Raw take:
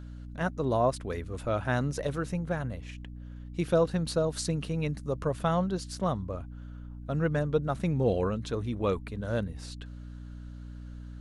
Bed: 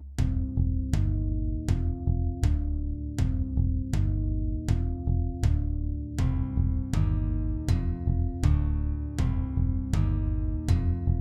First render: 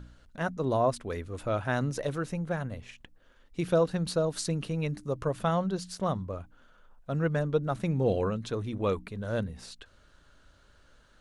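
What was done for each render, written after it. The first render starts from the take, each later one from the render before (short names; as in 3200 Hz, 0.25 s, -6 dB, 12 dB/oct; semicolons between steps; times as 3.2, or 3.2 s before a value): de-hum 60 Hz, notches 5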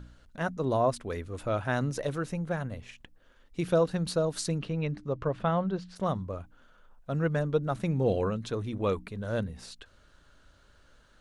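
4.58–5.95 LPF 4300 Hz -> 2700 Hz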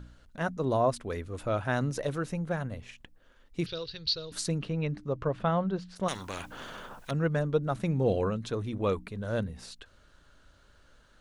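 3.66–4.32 EQ curve 120 Hz 0 dB, 180 Hz -21 dB, 290 Hz -18 dB, 420 Hz -8 dB, 680 Hz -23 dB, 1700 Hz -8 dB, 4600 Hz +13 dB, 8500 Hz -28 dB; 6.08–7.11 spectral compressor 4:1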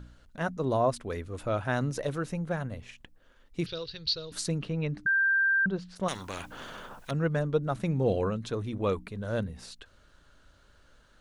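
5.06–5.66 bleep 1580 Hz -21.5 dBFS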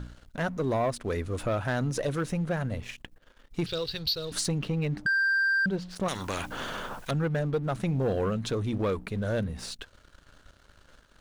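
compressor 2:1, threshold -34 dBFS, peak gain reduction 7.5 dB; sample leveller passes 2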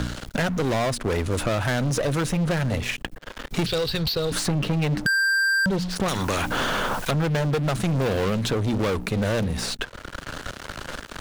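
sample leveller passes 3; three-band squash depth 70%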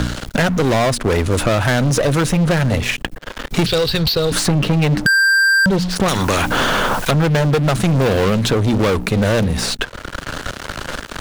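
gain +8 dB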